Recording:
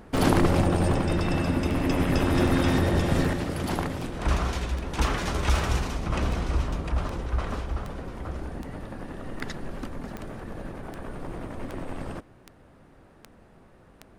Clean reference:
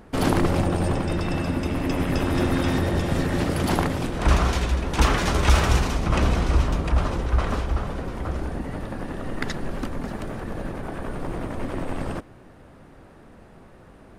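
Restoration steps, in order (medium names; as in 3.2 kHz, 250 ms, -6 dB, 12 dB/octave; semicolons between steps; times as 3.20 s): de-click; trim 0 dB, from 3.33 s +6 dB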